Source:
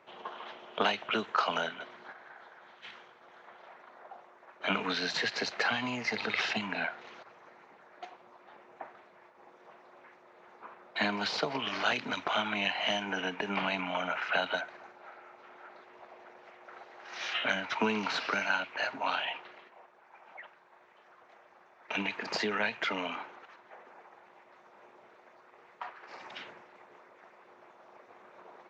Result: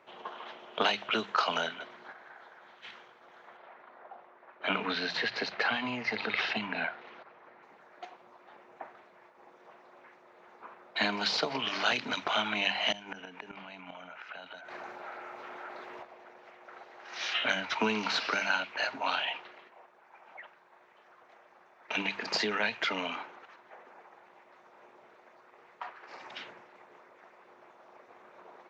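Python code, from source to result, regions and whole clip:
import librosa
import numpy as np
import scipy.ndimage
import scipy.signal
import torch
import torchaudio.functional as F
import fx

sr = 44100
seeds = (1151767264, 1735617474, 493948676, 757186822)

y = fx.chain(x, sr, fx.lowpass(hz=3200.0, slope=12),
    fx.hum_notches(base_hz=60, count=3), at=(3.57, 7.63))
y = fx.chain(y, sr, fx.gate_flip(shuts_db=-24.0, range_db=-26),
    fx.env_flatten(amount_pct=50), at=(12.92, 16.03))
y = fx.hum_notches(y, sr, base_hz=50, count=4)
y = fx.dynamic_eq(y, sr, hz=4600.0, q=1.0, threshold_db=-49.0, ratio=4.0, max_db=5)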